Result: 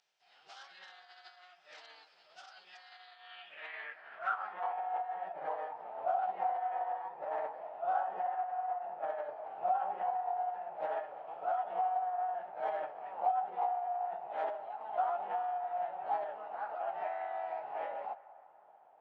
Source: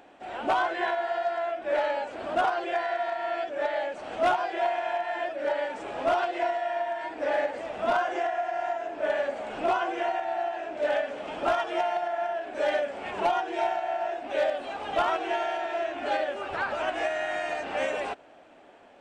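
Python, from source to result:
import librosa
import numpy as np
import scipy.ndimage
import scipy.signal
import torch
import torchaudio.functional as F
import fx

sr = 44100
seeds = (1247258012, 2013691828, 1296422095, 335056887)

y = fx.pitch_keep_formants(x, sr, semitones=-11.0)
y = fx.echo_banded(y, sr, ms=193, feedback_pct=70, hz=1100.0, wet_db=-16.5)
y = fx.filter_sweep_bandpass(y, sr, from_hz=5300.0, to_hz=800.0, start_s=2.84, end_s=4.85, q=3.6)
y = y * 10.0 ** (-2.5 / 20.0)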